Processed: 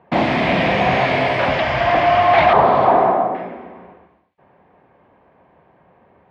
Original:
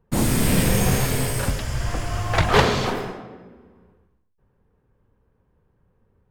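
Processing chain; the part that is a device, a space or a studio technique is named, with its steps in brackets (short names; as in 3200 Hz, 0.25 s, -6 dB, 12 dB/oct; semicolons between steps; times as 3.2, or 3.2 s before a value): overdrive pedal into a guitar cabinet (overdrive pedal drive 31 dB, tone 1400 Hz, clips at -4.5 dBFS; speaker cabinet 81–3800 Hz, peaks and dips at 110 Hz -8 dB, 220 Hz -3 dB, 450 Hz -8 dB, 680 Hz +9 dB, 1400 Hz -6 dB, 2200 Hz +5 dB); 2.53–3.35 resonant high shelf 1600 Hz -11.5 dB, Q 1.5; gain -1 dB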